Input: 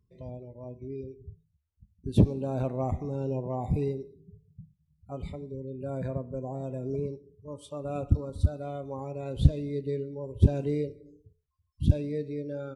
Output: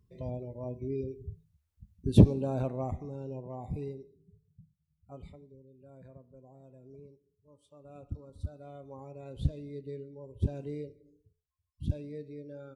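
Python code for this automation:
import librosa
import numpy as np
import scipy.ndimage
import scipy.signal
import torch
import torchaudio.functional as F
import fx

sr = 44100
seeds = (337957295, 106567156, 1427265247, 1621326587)

y = fx.gain(x, sr, db=fx.line((2.13, 3.5), (3.24, -9.0), (5.16, -9.0), (5.72, -19.5), (7.58, -19.5), (8.92, -9.5)))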